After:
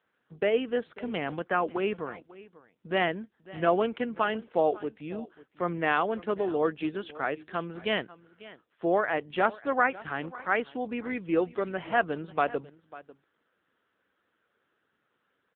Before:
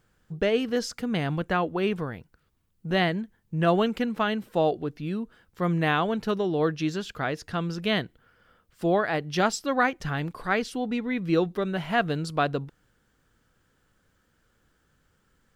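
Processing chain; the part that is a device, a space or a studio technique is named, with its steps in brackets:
satellite phone (band-pass filter 310–3,400 Hz; single-tap delay 545 ms −19 dB; AMR narrowband 6.7 kbit/s 8,000 Hz)

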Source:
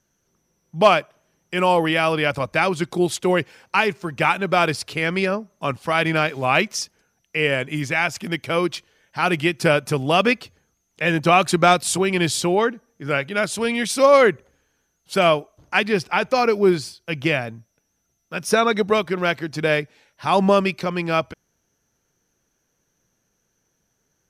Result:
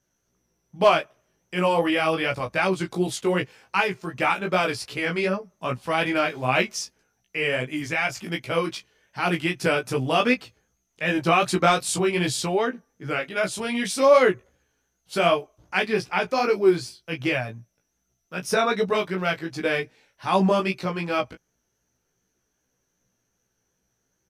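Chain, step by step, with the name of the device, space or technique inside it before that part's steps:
double-tracked vocal (double-tracking delay 16 ms −8 dB; chorus effect 2.6 Hz, delay 15.5 ms, depth 3.3 ms)
level −1.5 dB

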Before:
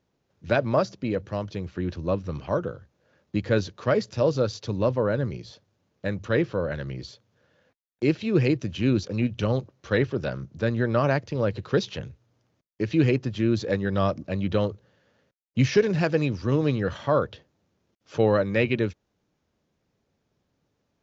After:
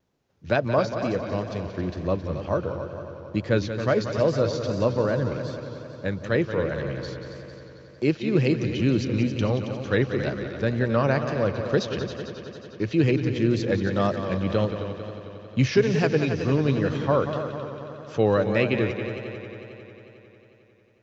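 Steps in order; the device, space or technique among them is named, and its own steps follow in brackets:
multi-head tape echo (echo machine with several playback heads 90 ms, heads second and third, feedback 65%, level −10 dB; tape wow and flutter)

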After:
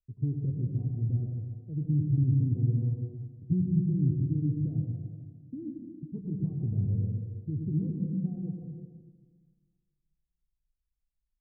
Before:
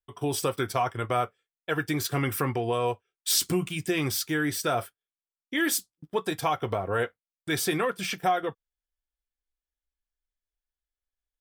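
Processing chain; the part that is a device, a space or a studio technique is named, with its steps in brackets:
club heard from the street (brickwall limiter −19.5 dBFS, peak gain reduction 7.5 dB; low-pass filter 200 Hz 24 dB per octave; convolution reverb RT60 1.6 s, pre-delay 90 ms, DRR 0.5 dB)
level +6.5 dB

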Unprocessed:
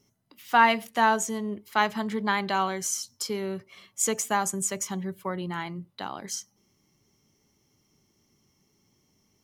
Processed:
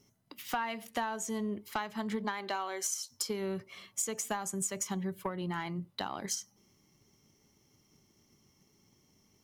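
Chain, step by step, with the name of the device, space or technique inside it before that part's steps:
0:02.23–0:03.10: high-pass filter 210 Hz → 470 Hz 24 dB per octave
drum-bus smash (transient designer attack +6 dB, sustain +1 dB; downward compressor 10 to 1, threshold −30 dBFS, peak gain reduction 18.5 dB; soft clipping −22.5 dBFS, distortion −19 dB)

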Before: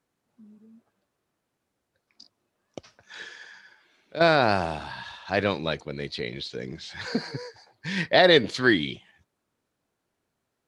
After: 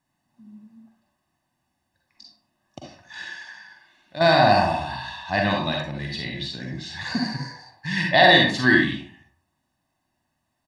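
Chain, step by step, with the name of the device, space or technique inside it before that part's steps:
microphone above a desk (comb filter 1.1 ms, depth 89%; convolution reverb RT60 0.55 s, pre-delay 39 ms, DRR −0.5 dB)
level −1 dB

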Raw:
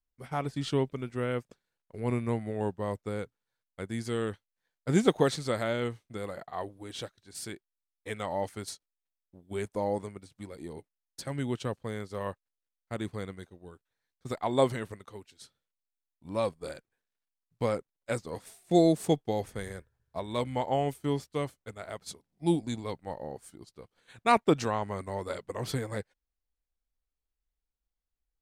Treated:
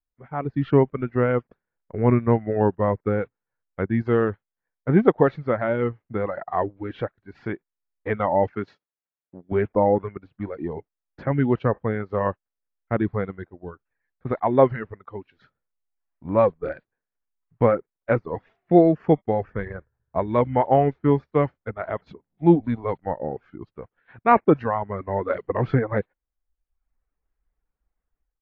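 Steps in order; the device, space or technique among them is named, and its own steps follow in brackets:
reverb reduction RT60 0.76 s
0:08.53–0:09.52: high-pass filter 140 Hz 12 dB per octave
action camera in a waterproof case (low-pass filter 1,900 Hz 24 dB per octave; automatic gain control gain up to 15 dB; level −2 dB; AAC 48 kbit/s 16,000 Hz)

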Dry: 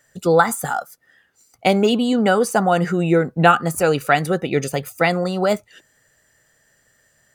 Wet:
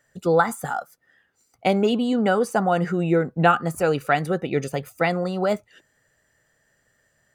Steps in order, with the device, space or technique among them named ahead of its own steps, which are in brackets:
behind a face mask (high-shelf EQ 3,400 Hz −7 dB)
level −3.5 dB

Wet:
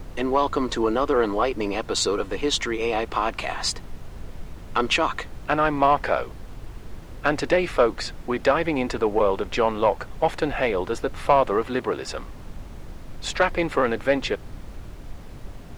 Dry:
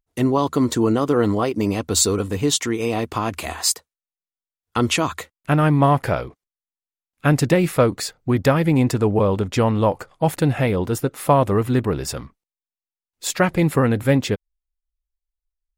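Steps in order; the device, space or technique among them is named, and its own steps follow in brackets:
aircraft cabin announcement (band-pass filter 450–4,000 Hz; soft clipping −9.5 dBFS, distortion −18 dB; brown noise bed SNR 10 dB)
0:11.66–0:12.07: high-pass filter 71 Hz
level +2 dB

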